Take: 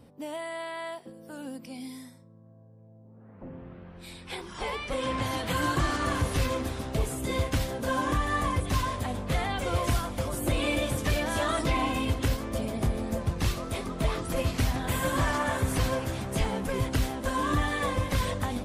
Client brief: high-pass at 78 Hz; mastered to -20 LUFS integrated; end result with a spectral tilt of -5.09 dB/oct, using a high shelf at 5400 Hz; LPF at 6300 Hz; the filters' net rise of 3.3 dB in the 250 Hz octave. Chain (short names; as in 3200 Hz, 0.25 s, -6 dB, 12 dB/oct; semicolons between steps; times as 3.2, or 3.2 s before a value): HPF 78 Hz; LPF 6300 Hz; bell 250 Hz +4 dB; high shelf 5400 Hz -4.5 dB; gain +9.5 dB